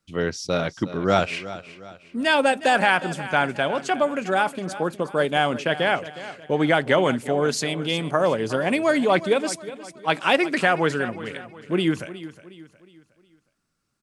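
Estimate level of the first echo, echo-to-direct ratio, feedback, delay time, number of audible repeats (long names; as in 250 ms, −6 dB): −15.0 dB, −14.0 dB, 41%, 363 ms, 3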